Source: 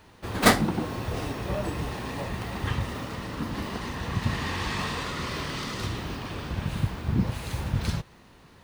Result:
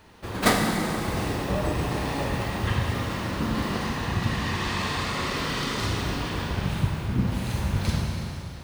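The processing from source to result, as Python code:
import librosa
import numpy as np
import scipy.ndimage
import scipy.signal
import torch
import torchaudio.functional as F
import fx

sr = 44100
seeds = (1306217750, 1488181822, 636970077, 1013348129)

y = fx.rev_schroeder(x, sr, rt60_s=2.4, comb_ms=32, drr_db=1.0)
y = fx.rider(y, sr, range_db=3, speed_s=0.5)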